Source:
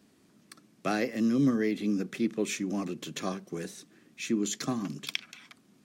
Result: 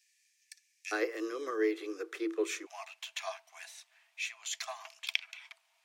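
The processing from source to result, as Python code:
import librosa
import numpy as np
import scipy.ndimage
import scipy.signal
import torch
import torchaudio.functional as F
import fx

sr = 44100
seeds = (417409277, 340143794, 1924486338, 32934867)

y = fx.cheby_ripple_highpass(x, sr, hz=fx.steps((0.0, 1700.0), (0.91, 320.0), (2.65, 640.0)), ripple_db=9)
y = y * 10.0 ** (3.5 / 20.0)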